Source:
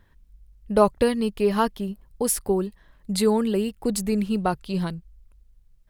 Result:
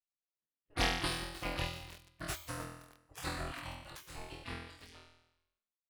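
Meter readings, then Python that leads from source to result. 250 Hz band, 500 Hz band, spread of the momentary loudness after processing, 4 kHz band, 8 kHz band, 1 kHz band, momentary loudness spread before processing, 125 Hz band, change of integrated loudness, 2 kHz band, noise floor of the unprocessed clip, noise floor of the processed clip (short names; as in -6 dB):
-23.0 dB, -24.0 dB, 20 LU, -4.0 dB, -15.5 dB, -14.5 dB, 12 LU, -12.0 dB, -15.5 dB, -3.0 dB, -58 dBFS, under -85 dBFS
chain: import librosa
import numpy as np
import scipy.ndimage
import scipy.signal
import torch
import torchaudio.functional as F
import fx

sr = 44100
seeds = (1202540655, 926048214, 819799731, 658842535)

y = fx.highpass(x, sr, hz=680.0, slope=6)
y = fx.cheby_harmonics(y, sr, harmonics=(4, 6, 8), levels_db=(-18, -10, -33), full_scale_db=-7.0)
y = fx.doubler(y, sr, ms=13.0, db=-12)
y = fx.power_curve(y, sr, exponent=1.4)
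y = fx.high_shelf(y, sr, hz=8600.0, db=-7.5)
y = fx.chopper(y, sr, hz=7.7, depth_pct=65, duty_pct=30)
y = fx.room_flutter(y, sr, wall_m=4.1, rt60_s=0.88)
y = fx.spec_gate(y, sr, threshold_db=-20, keep='weak')
y = fx.tilt_eq(y, sr, slope=-2.5)
y = fx.echo_crushed(y, sr, ms=308, feedback_pct=55, bits=7, wet_db=-12.5)
y = y * librosa.db_to_amplitude(5.0)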